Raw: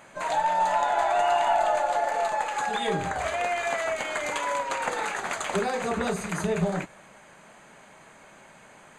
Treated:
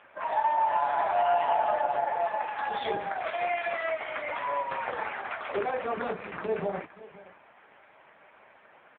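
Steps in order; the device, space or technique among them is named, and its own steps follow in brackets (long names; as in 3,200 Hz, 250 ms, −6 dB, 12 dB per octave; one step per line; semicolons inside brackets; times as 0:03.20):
0:02.52–0:03.93: dynamic equaliser 3,600 Hz, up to +6 dB, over −50 dBFS, Q 3.2
satellite phone (band-pass filter 320–3,300 Hz; single-tap delay 519 ms −18.5 dB; AMR narrowband 5.9 kbit/s 8,000 Hz)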